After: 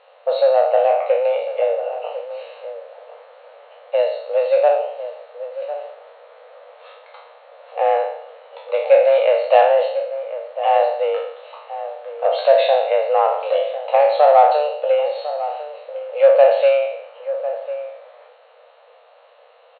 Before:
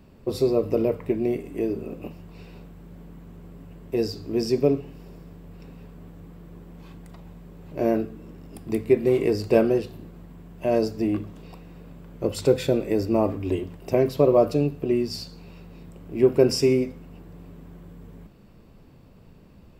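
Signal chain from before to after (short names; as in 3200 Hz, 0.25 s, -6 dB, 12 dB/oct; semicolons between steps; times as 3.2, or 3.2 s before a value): spectral trails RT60 0.72 s; frequency shift +160 Hz; in parallel at -4.5 dB: soft clip -17.5 dBFS, distortion -10 dB; on the sum: brick-wall FIR band-pass 460–4400 Hz; outdoor echo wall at 180 m, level -12 dB; gain +3 dB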